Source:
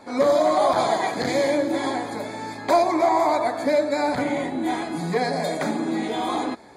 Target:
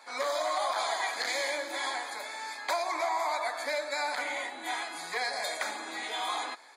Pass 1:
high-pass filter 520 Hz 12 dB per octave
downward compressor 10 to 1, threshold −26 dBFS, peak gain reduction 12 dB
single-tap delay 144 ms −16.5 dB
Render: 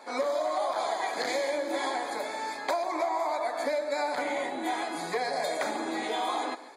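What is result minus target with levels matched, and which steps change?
echo-to-direct +11 dB; 500 Hz band +4.0 dB
change: high-pass filter 1,200 Hz 12 dB per octave
change: single-tap delay 144 ms −27.5 dB

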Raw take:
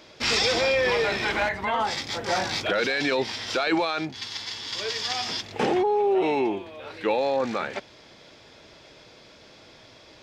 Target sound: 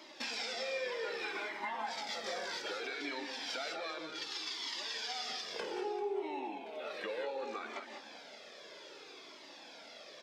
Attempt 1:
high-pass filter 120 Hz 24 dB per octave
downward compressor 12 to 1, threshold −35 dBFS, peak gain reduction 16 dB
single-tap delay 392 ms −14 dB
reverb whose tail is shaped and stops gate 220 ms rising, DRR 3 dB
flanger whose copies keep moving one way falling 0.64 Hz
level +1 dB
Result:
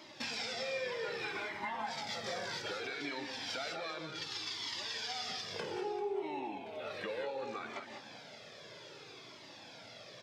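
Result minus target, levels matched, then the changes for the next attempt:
125 Hz band +14.0 dB
change: high-pass filter 240 Hz 24 dB per octave

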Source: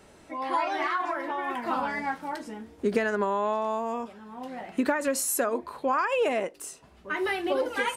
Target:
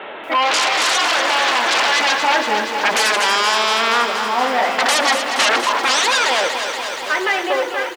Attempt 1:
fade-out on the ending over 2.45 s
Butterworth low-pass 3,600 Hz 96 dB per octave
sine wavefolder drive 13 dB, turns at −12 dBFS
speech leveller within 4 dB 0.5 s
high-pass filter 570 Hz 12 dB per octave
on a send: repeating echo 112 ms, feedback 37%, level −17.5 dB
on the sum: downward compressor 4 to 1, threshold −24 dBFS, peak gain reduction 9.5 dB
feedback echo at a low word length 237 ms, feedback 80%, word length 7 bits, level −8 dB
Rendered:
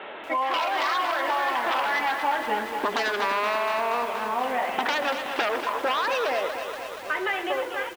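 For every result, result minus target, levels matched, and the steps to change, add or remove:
downward compressor: peak gain reduction +9.5 dB; sine wavefolder: distortion −13 dB
remove: downward compressor 4 to 1, threshold −24 dBFS, peak gain reduction 9.5 dB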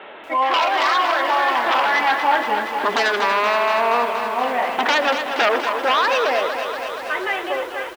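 sine wavefolder: distortion −13 dB
change: sine wavefolder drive 20 dB, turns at −12 dBFS

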